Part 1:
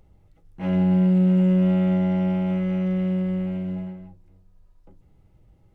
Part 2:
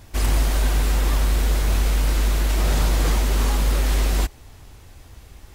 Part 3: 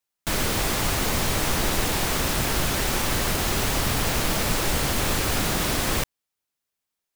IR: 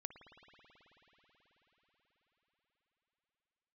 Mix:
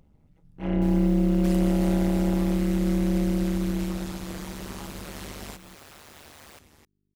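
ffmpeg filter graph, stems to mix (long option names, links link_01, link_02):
-filter_complex "[0:a]volume=-1.5dB,asplit=2[link_01][link_02];[link_02]volume=-6.5dB[link_03];[1:a]adelay=1300,volume=-2.5dB[link_04];[2:a]bass=frequency=250:gain=-12,treble=frequency=4000:gain=-2,aeval=exprs='val(0)+0.00562*(sin(2*PI*50*n/s)+sin(2*PI*2*50*n/s)/2+sin(2*PI*3*50*n/s)/3+sin(2*PI*4*50*n/s)/4+sin(2*PI*5*50*n/s)/5)':channel_layout=same,adelay=550,volume=-18.5dB,asplit=3[link_05][link_06][link_07];[link_05]atrim=end=2.7,asetpts=PTS-STARTPTS,afade=type=out:start_time=2.696:duration=0.004:curve=hsin[link_08];[link_06]atrim=start=2.7:end=4.34,asetpts=PTS-STARTPTS,volume=0[link_09];[link_07]atrim=start=4.34,asetpts=PTS-STARTPTS,afade=type=in:duration=0.004:curve=hsin[link_10];[link_08][link_09][link_10]concat=n=3:v=0:a=1[link_11];[link_04][link_11]amix=inputs=2:normalize=0,highpass=110,acompressor=threshold=-32dB:ratio=6,volume=0dB[link_12];[3:a]atrim=start_sample=2205[link_13];[link_03][link_13]afir=irnorm=-1:irlink=0[link_14];[link_01][link_12][link_14]amix=inputs=3:normalize=0,tremolo=f=150:d=0.974"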